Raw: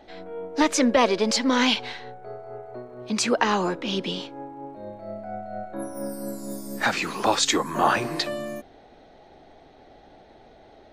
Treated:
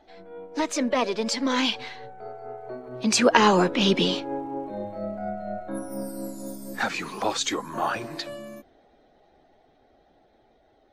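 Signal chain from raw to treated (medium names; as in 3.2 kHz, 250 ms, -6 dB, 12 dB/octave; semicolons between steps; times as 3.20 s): coarse spectral quantiser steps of 15 dB; Doppler pass-by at 4.12 s, 7 m/s, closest 5.8 m; trim +7.5 dB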